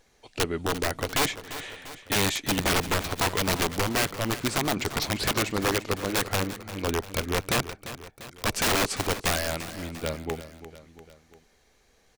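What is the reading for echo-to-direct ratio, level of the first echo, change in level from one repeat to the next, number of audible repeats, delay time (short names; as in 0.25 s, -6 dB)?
-12.0 dB, -13.5 dB, -5.0 dB, 3, 0.346 s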